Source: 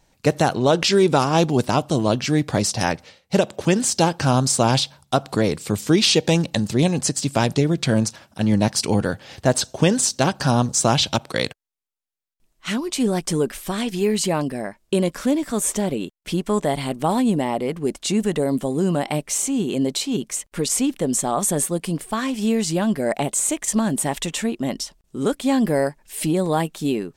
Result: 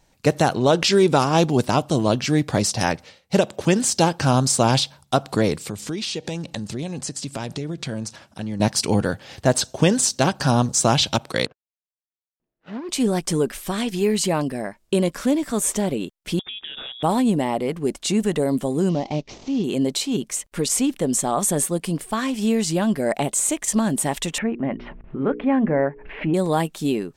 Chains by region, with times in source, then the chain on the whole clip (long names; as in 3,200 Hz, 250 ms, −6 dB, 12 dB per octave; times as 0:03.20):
0:05.69–0:08.60: low-pass filter 11,000 Hz + downward compressor 3 to 1, threshold −28 dBFS
0:11.46–0:12.89: running median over 41 samples + high-pass filter 440 Hz 6 dB per octave + high-frequency loss of the air 210 metres
0:16.39–0:17.03: parametric band 580 Hz −14 dB 0.29 octaves + downward compressor 5 to 1, threshold −31 dBFS + voice inversion scrambler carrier 3,600 Hz
0:18.89–0:19.64: variable-slope delta modulation 32 kbit/s + parametric band 1,500 Hz −14 dB 0.93 octaves
0:24.38–0:26.34: Butterworth low-pass 2,400 Hz + mains-hum notches 60/120/180/240/300/360/420/480 Hz + upward compression, threshold −22 dBFS
whole clip: no processing